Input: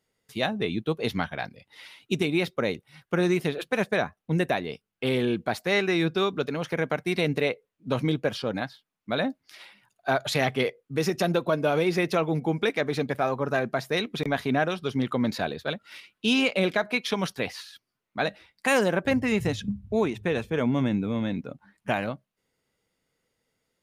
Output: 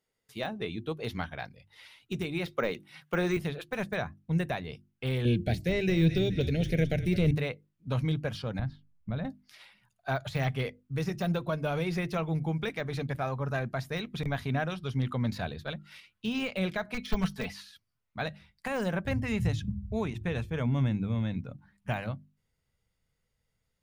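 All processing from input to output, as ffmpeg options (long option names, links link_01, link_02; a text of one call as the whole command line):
ffmpeg -i in.wav -filter_complex "[0:a]asettb=1/sr,asplit=3[link_01][link_02][link_03];[link_01]atrim=end=2.464[link_04];[link_02]atrim=start=2.46:end=3.37,asetpts=PTS-STARTPTS,afade=type=in:duration=0.004:curve=qsin,afade=type=out:start_time=0.906:duration=0.004:curve=qsin,highpass=250,equalizer=frequency=2700:width_type=o:width=1.4:gain=3,acontrast=54[link_05];[link_03]atrim=start=3.366[link_06];[link_04][link_05]acrossfade=duration=0.004:curve1=hsin:curve2=qsin[link_07];[link_07][link_06]acrossfade=duration=0.004:curve1=qsin:curve2=hsin,asettb=1/sr,asplit=3[link_08][link_09][link_10];[link_08]atrim=end=5.254[link_11];[link_09]atrim=start=5.25:end=7.31,asetpts=PTS-STARTPTS,afade=type=in:duration=0.004:curve=qsin,afade=type=out:start_time=2.056:duration=0.004:curve=qsin,asuperstop=centerf=1100:order=4:qfactor=0.75,acontrast=90,asplit=6[link_12][link_13][link_14][link_15][link_16][link_17];[link_13]adelay=210,afreqshift=-41,volume=-15.5dB[link_18];[link_14]adelay=420,afreqshift=-82,volume=-21.2dB[link_19];[link_15]adelay=630,afreqshift=-123,volume=-26.9dB[link_20];[link_16]adelay=840,afreqshift=-164,volume=-32.5dB[link_21];[link_17]adelay=1050,afreqshift=-205,volume=-38.2dB[link_22];[link_12][link_18][link_19][link_20][link_21][link_22]amix=inputs=6:normalize=0,atrim=end_sample=90846[link_23];[link_10]atrim=start=7.306[link_24];[link_11][link_23]acrossfade=duration=0.004:curve1=hsin:curve2=qsin[link_25];[link_25][link_24]acrossfade=duration=0.004:curve1=qsin:curve2=hsin,asettb=1/sr,asplit=3[link_26][link_27][link_28];[link_26]atrim=end=8.594[link_29];[link_27]atrim=start=8.59:end=9.25,asetpts=PTS-STARTPTS,afade=type=in:duration=0.004:curve=qsin,afade=type=out:start_time=0.656:duration=0.004:curve=qsin,aemphasis=mode=reproduction:type=riaa,acompressor=threshold=-27dB:ratio=4:attack=3.2:release=140:knee=1:detection=peak[link_30];[link_28]atrim=start=9.246[link_31];[link_29][link_30]acrossfade=duration=0.004:curve1=hsin:curve2=qsin[link_32];[link_32][link_31]acrossfade=duration=0.004:curve1=qsin:curve2=hsin,asettb=1/sr,asplit=3[link_33][link_34][link_35];[link_33]atrim=end=16.944[link_36];[link_34]atrim=start=16.94:end=17.54,asetpts=PTS-STARTPTS,afade=type=in:duration=0.004:curve=qsin,afade=type=out:start_time=0.596:duration=0.004:curve=qsin,aecho=1:1:4.6:0.9,atrim=end_sample=26460,aeval=exprs='0.15*(abs(mod(val(0)/0.15+3,4)-2)-1)':channel_layout=same[link_37];[link_35]atrim=start=17.536[link_38];[link_36][link_37]acrossfade=duration=0.004:curve1=hsin:curve2=qsin[link_39];[link_39][link_38]acrossfade=duration=0.004:curve1=qsin:curve2=hsin,deesser=0.85,bandreject=frequency=50:width_type=h:width=6,bandreject=frequency=100:width_type=h:width=6,bandreject=frequency=150:width_type=h:width=6,bandreject=frequency=200:width_type=h:width=6,bandreject=frequency=250:width_type=h:width=6,bandreject=frequency=300:width_type=h:width=6,bandreject=frequency=350:width_type=h:width=6,asubboost=boost=8:cutoff=110,volume=-6dB" out.wav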